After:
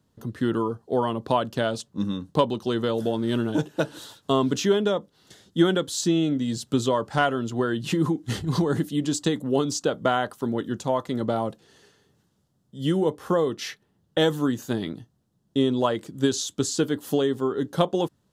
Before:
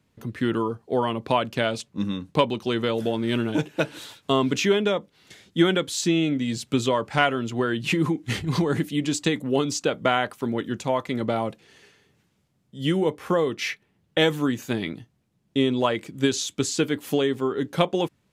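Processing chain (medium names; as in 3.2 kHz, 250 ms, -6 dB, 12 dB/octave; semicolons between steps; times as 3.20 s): peaking EQ 2.3 kHz -14.5 dB 0.48 oct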